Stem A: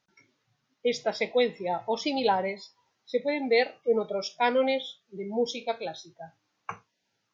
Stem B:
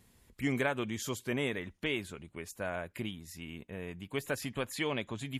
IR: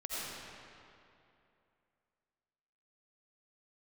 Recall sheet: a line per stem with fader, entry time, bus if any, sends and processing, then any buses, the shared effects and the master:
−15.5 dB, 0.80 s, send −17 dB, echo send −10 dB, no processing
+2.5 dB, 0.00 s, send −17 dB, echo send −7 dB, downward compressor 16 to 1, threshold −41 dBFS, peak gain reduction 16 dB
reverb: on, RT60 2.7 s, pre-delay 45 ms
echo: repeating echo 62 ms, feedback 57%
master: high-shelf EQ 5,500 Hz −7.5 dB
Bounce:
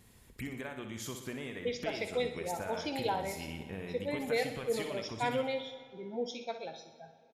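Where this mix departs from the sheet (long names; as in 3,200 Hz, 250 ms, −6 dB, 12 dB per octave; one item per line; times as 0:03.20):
stem A −15.5 dB → −9.5 dB
master: missing high-shelf EQ 5,500 Hz −7.5 dB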